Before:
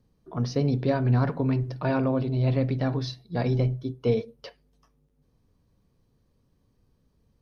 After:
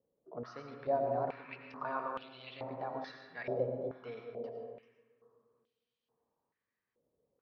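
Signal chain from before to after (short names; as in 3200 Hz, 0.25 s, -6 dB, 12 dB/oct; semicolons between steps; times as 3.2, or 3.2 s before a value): digital reverb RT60 2.4 s, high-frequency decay 0.3×, pre-delay 60 ms, DRR 2.5 dB; stepped band-pass 2.3 Hz 530–3100 Hz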